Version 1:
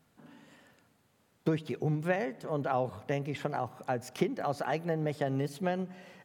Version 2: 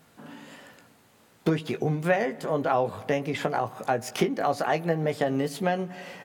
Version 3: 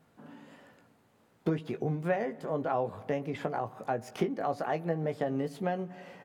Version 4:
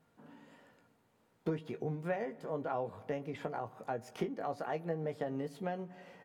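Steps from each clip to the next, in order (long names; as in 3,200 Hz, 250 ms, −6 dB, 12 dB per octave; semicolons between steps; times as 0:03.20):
low-shelf EQ 180 Hz −7 dB; in parallel at +2.5 dB: downward compressor, threshold −40 dBFS, peak gain reduction 15 dB; on the sum: double-tracking delay 18 ms −8 dB; level +4 dB
high-shelf EQ 2,000 Hz −10 dB; level −5 dB
tuned comb filter 470 Hz, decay 0.16 s, harmonics all, mix 60%; level +1 dB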